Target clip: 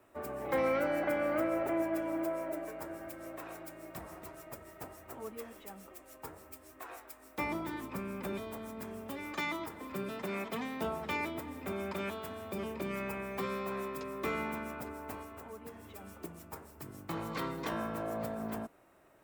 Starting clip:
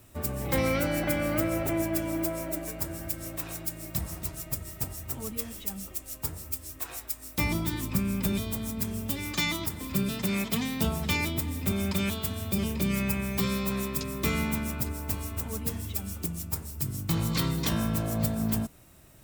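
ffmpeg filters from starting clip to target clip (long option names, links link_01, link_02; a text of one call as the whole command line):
ffmpeg -i in.wav -filter_complex "[0:a]acrossover=split=310 2000:gain=0.1 1 0.126[link_01][link_02][link_03];[link_01][link_02][link_03]amix=inputs=3:normalize=0,asettb=1/sr,asplit=3[link_04][link_05][link_06];[link_04]atrim=end=15.224[link_07];[link_05]atrim=start=15.22:end=16.01,asetpts=PTS-STARTPTS,afade=type=in:duration=0.004:curve=qsin,afade=type=out:start_time=0.786:duration=0.004:curve=qsin,acompressor=threshold=-46dB:ratio=2.5[link_08];[link_06]atrim=start=16.006[link_09];[link_07][link_08]acrossfade=duration=0.004:curve1=hsin:curve2=qsin[link_10];[link_10][link_09]acrossfade=duration=0.004:curve1=qsin:curve2=hsin" out.wav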